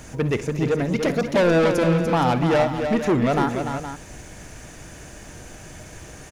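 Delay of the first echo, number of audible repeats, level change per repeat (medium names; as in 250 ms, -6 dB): 55 ms, 4, no regular repeats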